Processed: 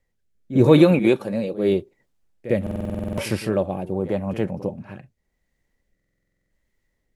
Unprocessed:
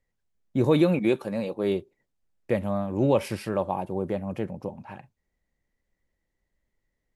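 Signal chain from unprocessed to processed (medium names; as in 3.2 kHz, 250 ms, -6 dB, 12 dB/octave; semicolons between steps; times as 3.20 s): rotary cabinet horn 0.85 Hz; pre-echo 53 ms -14 dB; buffer glitch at 2.62/5.95 s, samples 2048, times 11; trim +7.5 dB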